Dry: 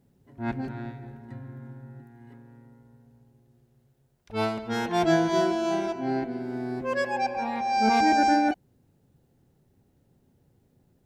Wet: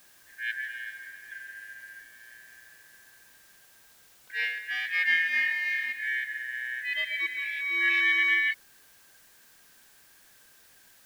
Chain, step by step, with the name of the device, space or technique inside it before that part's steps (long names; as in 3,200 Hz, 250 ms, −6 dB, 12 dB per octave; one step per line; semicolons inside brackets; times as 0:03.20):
split-band scrambled radio (band-splitting scrambler in four parts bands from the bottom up 4123; band-pass filter 300–3,200 Hz; white noise bed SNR 26 dB)
0:04.92–0:05.83: high-pass filter 330 Hz 12 dB per octave
level −2.5 dB